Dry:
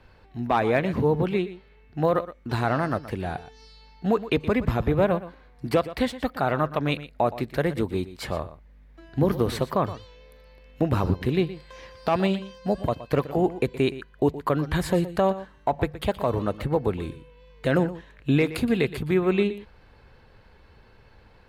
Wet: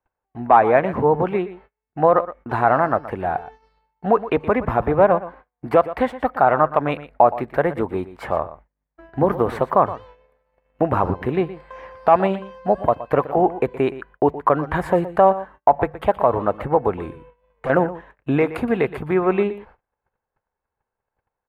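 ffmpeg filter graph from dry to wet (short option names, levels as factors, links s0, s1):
-filter_complex "[0:a]asettb=1/sr,asplit=3[s0][s1][s2];[s0]atrim=end=17.134[s3];[s1]atrim=start=17.13:end=17.7,asetpts=PTS-STARTPTS,afade=t=in:d=0.004:c=qsin,afade=t=out:st=0.566:d=0.004:c=qsin,highpass=48,lowshelf=f=85:g=5,volume=23.7,asoftclip=hard,volume=0.0422[s4];[s2]atrim=start=17.696[s5];[s3][s4]acrossfade=d=0.004:c1=hsin:c2=qsin[s6];[s6][s5]acrossfade=d=0.004:c1=qsin:c2=hsin,agate=range=0.02:threshold=0.00447:ratio=16:detection=peak,firequalizer=gain_entry='entry(110,0);entry(770,14);entry(4100,-11);entry(9800,-7)':delay=0.05:min_phase=1,volume=0.794"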